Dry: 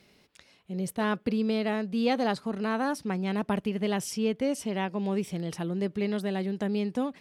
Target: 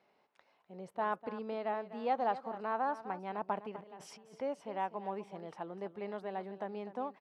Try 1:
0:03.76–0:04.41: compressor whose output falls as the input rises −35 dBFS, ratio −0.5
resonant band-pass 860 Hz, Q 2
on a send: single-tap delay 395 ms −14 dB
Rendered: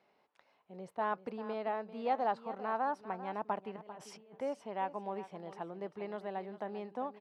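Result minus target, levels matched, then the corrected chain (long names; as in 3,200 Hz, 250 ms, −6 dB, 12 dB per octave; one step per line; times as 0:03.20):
echo 145 ms late
0:03.76–0:04.41: compressor whose output falls as the input rises −35 dBFS, ratio −0.5
resonant band-pass 860 Hz, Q 2
on a send: single-tap delay 250 ms −14 dB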